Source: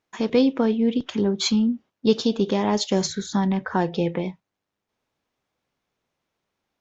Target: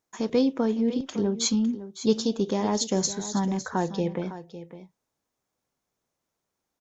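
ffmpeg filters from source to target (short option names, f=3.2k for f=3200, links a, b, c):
-af "firequalizer=gain_entry='entry(970,0);entry(2700,-5);entry(6700,8)':delay=0.05:min_phase=1,aecho=1:1:556:0.211,volume=-4dB"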